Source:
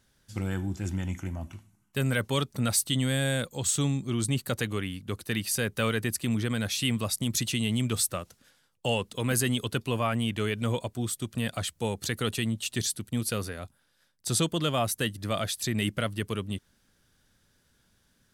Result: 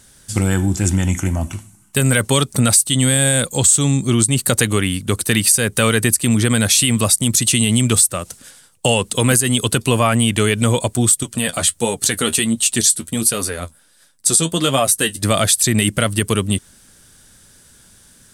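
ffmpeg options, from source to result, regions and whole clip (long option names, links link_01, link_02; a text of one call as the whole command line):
ffmpeg -i in.wav -filter_complex "[0:a]asettb=1/sr,asplit=3[link_01][link_02][link_03];[link_01]atrim=end=11.234[link_04];[link_02]atrim=start=11.23:end=15.23,asetpts=PTS-STARTPTS,afade=type=in:duration=0.004:curve=qsin,afade=type=out:start_time=3.996:duration=0.004:curve=qsin,equalizer=frequency=110:width=4.9:gain=-13,flanger=delay=6.5:depth=6.4:regen=38:speed=1.4:shape=triangular[link_05];[link_03]atrim=start=15.226[link_06];[link_04][link_05]acrossfade=duration=0.004:curve1=hsin:curve2=qsin[link_07];[link_07][link_06]acrossfade=duration=0.004:curve1=qsin:curve2=hsin,equalizer=frequency=8700:width_type=o:width=0.81:gain=13.5,acompressor=threshold=-27dB:ratio=2.5,alimiter=level_in=16.5dB:limit=-1dB:release=50:level=0:latency=1,volume=-1dB" out.wav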